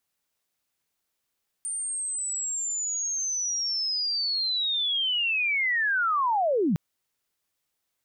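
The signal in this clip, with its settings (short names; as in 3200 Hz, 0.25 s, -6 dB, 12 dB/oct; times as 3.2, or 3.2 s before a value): chirp linear 9000 Hz -> 140 Hz -28.5 dBFS -> -20.5 dBFS 5.11 s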